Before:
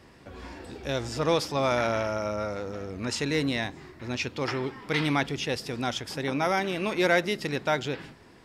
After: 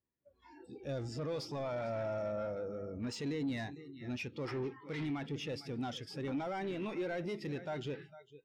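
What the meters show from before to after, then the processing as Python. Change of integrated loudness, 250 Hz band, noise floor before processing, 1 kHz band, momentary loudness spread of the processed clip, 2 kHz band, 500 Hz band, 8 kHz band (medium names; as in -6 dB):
-11.0 dB, -8.5 dB, -53 dBFS, -14.5 dB, 6 LU, -16.5 dB, -10.0 dB, -16.0 dB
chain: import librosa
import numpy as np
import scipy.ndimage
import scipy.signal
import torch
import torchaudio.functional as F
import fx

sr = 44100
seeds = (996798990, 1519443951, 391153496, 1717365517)

p1 = fx.over_compress(x, sr, threshold_db=-28.0, ratio=-0.5)
p2 = x + (p1 * 10.0 ** (2.0 / 20.0))
p3 = p2 + 10.0 ** (-14.5 / 20.0) * np.pad(p2, (int(453 * sr / 1000.0), 0))[:len(p2)]
p4 = fx.noise_reduce_blind(p3, sr, reduce_db=17)
p5 = 10.0 ** (-23.0 / 20.0) * np.tanh(p4 / 10.0 ** (-23.0 / 20.0))
p6 = fx.spectral_expand(p5, sr, expansion=1.5)
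y = p6 * 10.0 ** (-7.0 / 20.0)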